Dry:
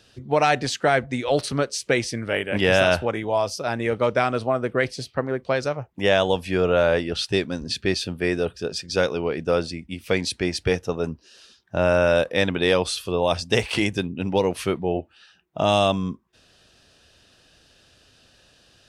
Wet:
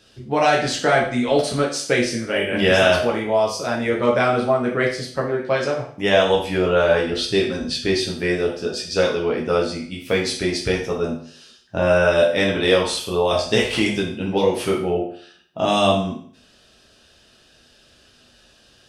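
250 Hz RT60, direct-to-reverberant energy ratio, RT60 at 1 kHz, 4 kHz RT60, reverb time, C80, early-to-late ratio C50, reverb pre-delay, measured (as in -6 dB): 0.55 s, -2.5 dB, 0.50 s, 0.50 s, 0.50 s, 10.5 dB, 6.0 dB, 8 ms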